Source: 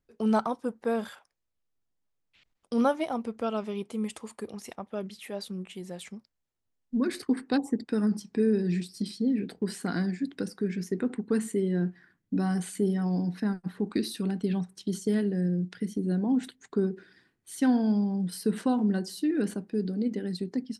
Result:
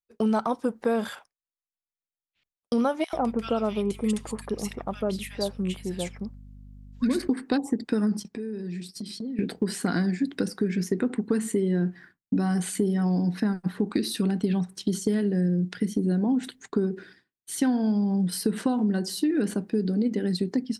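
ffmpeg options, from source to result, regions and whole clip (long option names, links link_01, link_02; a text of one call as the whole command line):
ffmpeg -i in.wav -filter_complex "[0:a]asettb=1/sr,asplit=3[link_01][link_02][link_03];[link_01]atrim=end=3.044[link_04];[link_02]atrim=start=3.04:end=7.28,asetpts=PTS-STARTPTS,afade=type=in:duration=0.004:curve=qsin,afade=type=out:start_time=4.236:duration=0.004:curve=qsin,aeval=exprs='val(0)+0.00282*(sin(2*PI*50*n/s)+sin(2*PI*2*50*n/s)/2+sin(2*PI*3*50*n/s)/3+sin(2*PI*4*50*n/s)/4+sin(2*PI*5*50*n/s)/5)':channel_layout=same,acrossover=split=1600[link_05][link_06];[link_05]adelay=90[link_07];[link_07][link_06]amix=inputs=2:normalize=0,atrim=end_sample=186984[link_08];[link_03]atrim=start=7.276[link_09];[link_04][link_08]acrossfade=duration=0.004:curve1=hsin:curve2=qsin[link_10];[link_10][link_09]acrossfade=duration=0.004:curve1=qsin:curve2=hsin,asettb=1/sr,asplit=3[link_11][link_12][link_13];[link_11]atrim=end=8.234[link_14];[link_12]atrim=start=8.23:end=9.39,asetpts=PTS-STARTPTS,afade=type=in:duration=0.004:curve=qsin,afade=type=out:start_time=1.156:duration=0.004:curve=qsin,agate=range=-12dB:threshold=-49dB:ratio=16:release=100:detection=peak,acompressor=threshold=-42dB:ratio=4:attack=3.2:release=140:knee=1:detection=peak[link_15];[link_13]atrim=start=9.386[link_16];[link_14][link_15]acrossfade=duration=0.004:curve1=hsin:curve2=qsin[link_17];[link_17][link_16]acrossfade=duration=0.004:curve1=qsin:curve2=hsin,agate=range=-33dB:threshold=-50dB:ratio=3:detection=peak,acompressor=threshold=-29dB:ratio=6,volume=8dB" out.wav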